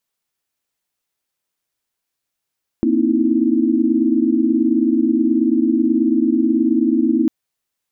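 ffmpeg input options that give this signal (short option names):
-f lavfi -i "aevalsrc='0.119*(sin(2*PI*233.08*t)+sin(2*PI*261.63*t)+sin(2*PI*311.13*t)+sin(2*PI*329.63*t))':d=4.45:s=44100"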